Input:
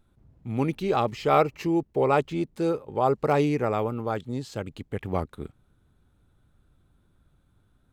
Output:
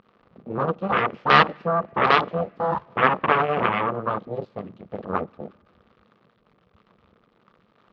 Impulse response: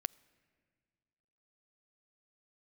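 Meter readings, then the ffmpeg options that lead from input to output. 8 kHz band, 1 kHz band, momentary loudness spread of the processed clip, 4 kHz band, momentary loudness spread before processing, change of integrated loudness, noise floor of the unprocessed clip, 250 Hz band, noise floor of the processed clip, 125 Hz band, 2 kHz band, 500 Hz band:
no reading, +6.5 dB, 20 LU, +11.0 dB, 13 LU, +4.0 dB, -66 dBFS, -3.0 dB, -64 dBFS, -2.0 dB, +13.0 dB, -0.5 dB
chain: -filter_complex "[0:a]aeval=exprs='val(0)+0.5*0.0668*sgn(val(0))':c=same,bandreject=f=50:t=h:w=6,bandreject=f=100:t=h:w=6,bandreject=f=150:t=h:w=6,bandreject=f=200:t=h:w=6,bandreject=f=250:t=h:w=6,bandreject=f=300:t=h:w=6,bandreject=f=350:t=h:w=6,bandreject=f=400:t=h:w=6,bandreject=f=450:t=h:w=6,bandreject=f=500:t=h:w=6,aeval=exprs='abs(val(0))':c=same,aeval=exprs='0.447*(cos(1*acos(clip(val(0)/0.447,-1,1)))-cos(1*PI/2))+0.0794*(cos(2*acos(clip(val(0)/0.447,-1,1)))-cos(2*PI/2))+0.0251*(cos(4*acos(clip(val(0)/0.447,-1,1)))-cos(4*PI/2))+0.141*(cos(8*acos(clip(val(0)/0.447,-1,1)))-cos(8*PI/2))':c=same,afwtdn=0.0282,highpass=170,equalizer=f=200:t=q:w=4:g=6,equalizer=f=290:t=q:w=4:g=-5,equalizer=f=480:t=q:w=4:g=4,equalizer=f=1200:t=q:w=4:g=10,lowpass=f=3800:w=0.5412,lowpass=f=3800:w=1.3066,asplit=2[s0][s1];[1:a]atrim=start_sample=2205[s2];[s1][s2]afir=irnorm=-1:irlink=0,volume=1.12[s3];[s0][s3]amix=inputs=2:normalize=0,volume=0.841"

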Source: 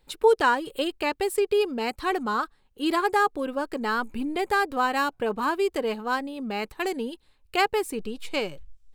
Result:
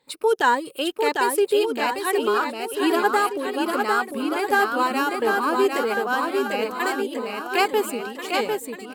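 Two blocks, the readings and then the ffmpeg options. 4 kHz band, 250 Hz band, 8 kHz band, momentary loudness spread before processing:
+4.0 dB, +3.5 dB, +7.0 dB, 9 LU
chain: -af "afftfilt=real='re*pow(10,8/40*sin(2*PI*(1*log(max(b,1)*sr/1024/100)/log(2)-(1.9)*(pts-256)/sr)))':imag='im*pow(10,8/40*sin(2*PI*(1*log(max(b,1)*sr/1024/100)/log(2)-(1.9)*(pts-256)/sr)))':win_size=1024:overlap=0.75,highpass=190,aecho=1:1:750|1388|1929|2390|2781:0.631|0.398|0.251|0.158|0.1,adynamicequalizer=threshold=0.00447:dfrequency=7700:dqfactor=0.7:tfrequency=7700:tqfactor=0.7:attack=5:release=100:ratio=0.375:range=2.5:mode=boostabove:tftype=highshelf,volume=1.12"

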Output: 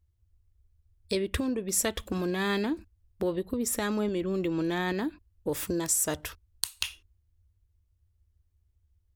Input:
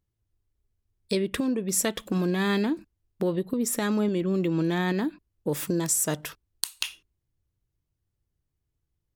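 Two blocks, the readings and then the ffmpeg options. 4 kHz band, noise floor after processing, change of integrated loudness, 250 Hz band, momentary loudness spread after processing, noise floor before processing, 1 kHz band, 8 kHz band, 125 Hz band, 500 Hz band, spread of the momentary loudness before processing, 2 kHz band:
-1.5 dB, -72 dBFS, -3.0 dB, -4.5 dB, 8 LU, -81 dBFS, -1.5 dB, -1.5 dB, -6.5 dB, -2.5 dB, 9 LU, -1.5 dB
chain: -af "lowshelf=f=110:t=q:w=3:g=10,volume=0.841"

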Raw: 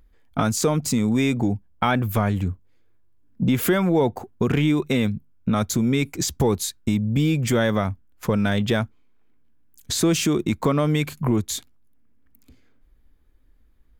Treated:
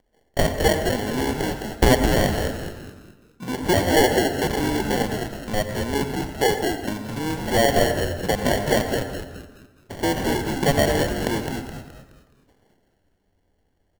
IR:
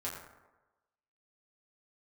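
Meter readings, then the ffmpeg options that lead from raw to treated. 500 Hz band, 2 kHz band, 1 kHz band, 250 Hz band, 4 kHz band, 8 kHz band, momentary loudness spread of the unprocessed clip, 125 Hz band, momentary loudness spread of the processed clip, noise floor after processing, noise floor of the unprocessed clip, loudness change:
+3.5 dB, +4.0 dB, +4.0 dB, -3.0 dB, +3.0 dB, -1.5 dB, 7 LU, -3.5 dB, 14 LU, -67 dBFS, -56 dBFS, 0.0 dB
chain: -filter_complex "[0:a]lowpass=6100,acrossover=split=460 2700:gain=0.0708 1 0.0708[s0][s1][s2];[s0][s1][s2]amix=inputs=3:normalize=0,acrusher=samples=35:mix=1:aa=0.000001,asplit=6[s3][s4][s5][s6][s7][s8];[s4]adelay=211,afreqshift=-97,volume=0.562[s9];[s5]adelay=422,afreqshift=-194,volume=0.224[s10];[s6]adelay=633,afreqshift=-291,volume=0.0902[s11];[s7]adelay=844,afreqshift=-388,volume=0.0359[s12];[s8]adelay=1055,afreqshift=-485,volume=0.0145[s13];[s3][s9][s10][s11][s12][s13]amix=inputs=6:normalize=0,asplit=2[s14][s15];[1:a]atrim=start_sample=2205,adelay=88[s16];[s15][s16]afir=irnorm=-1:irlink=0,volume=0.299[s17];[s14][s17]amix=inputs=2:normalize=0,volume=2.24"

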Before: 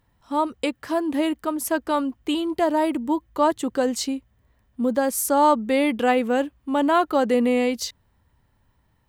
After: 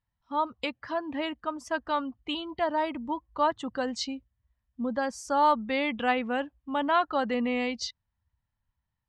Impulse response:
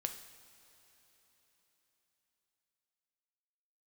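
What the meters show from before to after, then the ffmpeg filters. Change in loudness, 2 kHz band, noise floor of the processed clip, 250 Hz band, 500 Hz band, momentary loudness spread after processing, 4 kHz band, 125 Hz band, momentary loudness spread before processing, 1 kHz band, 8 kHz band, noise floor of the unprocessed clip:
-7.0 dB, -2.5 dB, -84 dBFS, -9.5 dB, -8.5 dB, 10 LU, -3.0 dB, no reading, 7 LU, -4.5 dB, -13.5 dB, -66 dBFS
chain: -af "afftdn=nr=16:nf=-42,lowpass=f=5600:w=0.5412,lowpass=f=5600:w=1.3066,equalizer=f=380:w=1.2:g=-12.5,volume=0.794"

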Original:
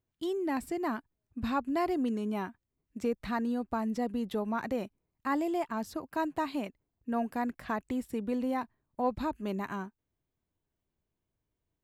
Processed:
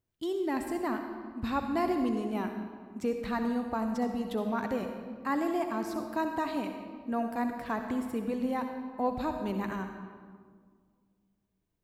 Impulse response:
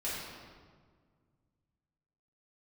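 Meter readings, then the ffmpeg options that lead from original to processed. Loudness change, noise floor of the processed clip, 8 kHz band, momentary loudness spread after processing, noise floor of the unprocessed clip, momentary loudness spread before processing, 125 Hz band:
+1.0 dB, -78 dBFS, +1.0 dB, 8 LU, under -85 dBFS, 9 LU, +1.5 dB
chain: -filter_complex "[0:a]asplit=2[s0][s1];[1:a]atrim=start_sample=2205,highshelf=f=8600:g=5.5,adelay=63[s2];[s1][s2]afir=irnorm=-1:irlink=0,volume=0.316[s3];[s0][s3]amix=inputs=2:normalize=0"

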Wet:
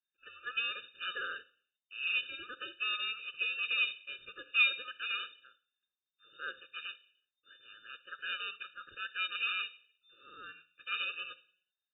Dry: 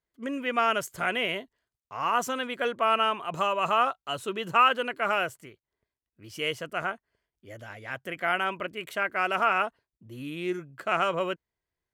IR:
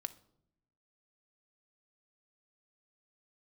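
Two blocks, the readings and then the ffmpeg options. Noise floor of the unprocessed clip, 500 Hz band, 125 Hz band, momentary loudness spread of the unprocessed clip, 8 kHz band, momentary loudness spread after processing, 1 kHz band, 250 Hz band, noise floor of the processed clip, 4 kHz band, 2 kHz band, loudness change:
under -85 dBFS, -27.0 dB, under -30 dB, 14 LU, under -35 dB, 19 LU, -20.5 dB, under -25 dB, under -85 dBFS, -2.0 dB, -4.5 dB, -7.5 dB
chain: -filter_complex "[0:a]aemphasis=mode=production:type=cd[s0];[1:a]atrim=start_sample=2205,afade=t=out:st=0.44:d=0.01,atrim=end_sample=19845[s1];[s0][s1]afir=irnorm=-1:irlink=0,asplit=2[s2][s3];[s3]acrusher=samples=34:mix=1:aa=0.000001,volume=0.335[s4];[s2][s4]amix=inputs=2:normalize=0,lowpass=f=3100:t=q:w=0.5098,lowpass=f=3100:t=q:w=0.6013,lowpass=f=3100:t=q:w=0.9,lowpass=f=3100:t=q:w=2.563,afreqshift=-3700,afftfilt=real='re*eq(mod(floor(b*sr/1024/600),2),0)':imag='im*eq(mod(floor(b*sr/1024/600),2),0)':win_size=1024:overlap=0.75,volume=0.596"

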